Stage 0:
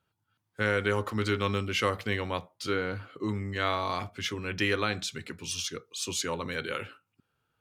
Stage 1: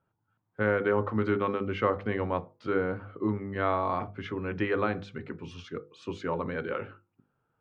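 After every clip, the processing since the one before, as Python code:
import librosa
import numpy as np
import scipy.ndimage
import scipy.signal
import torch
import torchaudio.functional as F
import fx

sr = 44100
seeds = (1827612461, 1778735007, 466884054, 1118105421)

y = scipy.signal.sosfilt(scipy.signal.butter(2, 1200.0, 'lowpass', fs=sr, output='sos'), x)
y = fx.peak_eq(y, sr, hz=67.0, db=-9.0, octaves=0.53)
y = fx.hum_notches(y, sr, base_hz=50, count=10)
y = y * 10.0 ** (4.0 / 20.0)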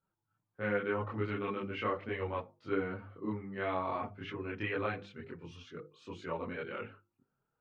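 y = fx.dynamic_eq(x, sr, hz=2600.0, q=2.0, threshold_db=-52.0, ratio=4.0, max_db=7)
y = fx.chorus_voices(y, sr, voices=4, hz=0.32, base_ms=25, depth_ms=4.7, mix_pct=60)
y = y * 10.0 ** (-4.5 / 20.0)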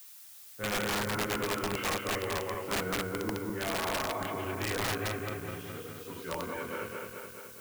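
y = fx.reverse_delay_fb(x, sr, ms=106, feedback_pct=80, wet_db=-2.5)
y = (np.mod(10.0 ** (25.0 / 20.0) * y + 1.0, 2.0) - 1.0) / 10.0 ** (25.0 / 20.0)
y = fx.dmg_noise_colour(y, sr, seeds[0], colour='blue', level_db=-51.0)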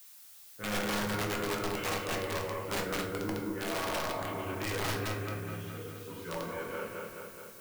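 y = fx.room_shoebox(x, sr, seeds[1], volume_m3=110.0, walls='mixed', distance_m=0.59)
y = y * 10.0 ** (-3.5 / 20.0)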